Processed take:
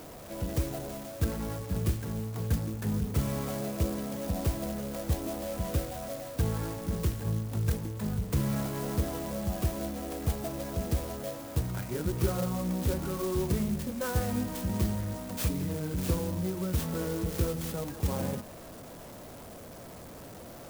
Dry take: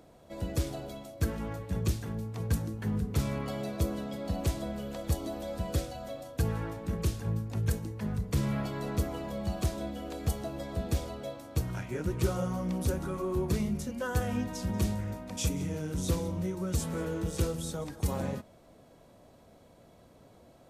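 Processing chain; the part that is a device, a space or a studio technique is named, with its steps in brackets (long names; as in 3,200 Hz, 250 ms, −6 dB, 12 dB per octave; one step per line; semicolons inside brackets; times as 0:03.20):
early CD player with a faulty converter (converter with a step at zero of −42 dBFS; converter with an unsteady clock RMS 0.084 ms)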